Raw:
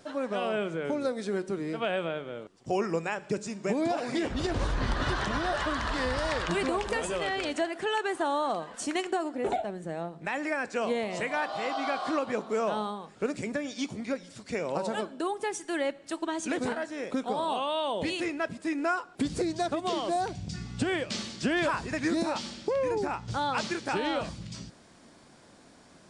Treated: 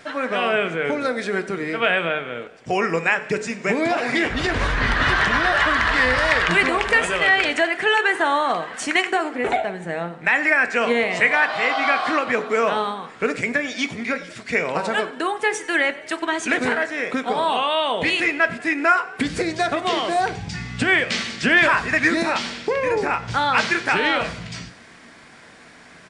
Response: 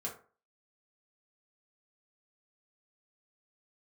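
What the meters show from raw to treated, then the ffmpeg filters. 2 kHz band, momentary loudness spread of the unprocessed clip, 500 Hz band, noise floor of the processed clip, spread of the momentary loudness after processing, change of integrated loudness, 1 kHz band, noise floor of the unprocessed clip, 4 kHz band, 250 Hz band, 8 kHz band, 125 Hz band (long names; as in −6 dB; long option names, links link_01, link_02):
+16.5 dB, 6 LU, +7.0 dB, −46 dBFS, 8 LU, +11.0 dB, +10.0 dB, −55 dBFS, +11.0 dB, +5.5 dB, +6.5 dB, +6.0 dB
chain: -filter_complex "[0:a]equalizer=frequency=2000:width=1:gain=13.5,asplit=6[link_01][link_02][link_03][link_04][link_05][link_06];[link_02]adelay=94,afreqshift=34,volume=-20dB[link_07];[link_03]adelay=188,afreqshift=68,volume=-24.4dB[link_08];[link_04]adelay=282,afreqshift=102,volume=-28.9dB[link_09];[link_05]adelay=376,afreqshift=136,volume=-33.3dB[link_10];[link_06]adelay=470,afreqshift=170,volume=-37.7dB[link_11];[link_01][link_07][link_08][link_09][link_10][link_11]amix=inputs=6:normalize=0,asplit=2[link_12][link_13];[1:a]atrim=start_sample=2205[link_14];[link_13][link_14]afir=irnorm=-1:irlink=0,volume=-7.5dB[link_15];[link_12][link_15]amix=inputs=2:normalize=0,volume=3dB"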